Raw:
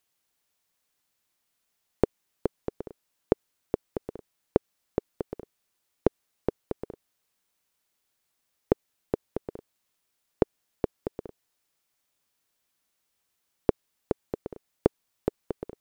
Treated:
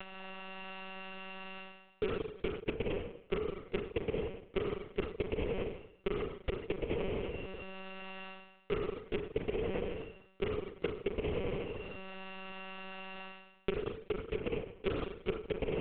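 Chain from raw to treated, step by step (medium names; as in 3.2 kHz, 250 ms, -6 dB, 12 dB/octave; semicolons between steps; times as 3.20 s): sorted samples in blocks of 16 samples; in parallel at -3 dB: upward compressor, threshold -28 dBFS; on the sum: treble shelf 2.2 kHz -8 dB; hard clipper -12.5 dBFS, distortion -5 dB; spring tank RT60 1.8 s, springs 34/42 ms, chirp 25 ms, DRR 4.5 dB; transient shaper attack +2 dB, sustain -3 dB; reverse; compression 10:1, threshold -43 dBFS, peak gain reduction 26.5 dB; reverse; monotone LPC vocoder at 8 kHz 190 Hz; trim +12 dB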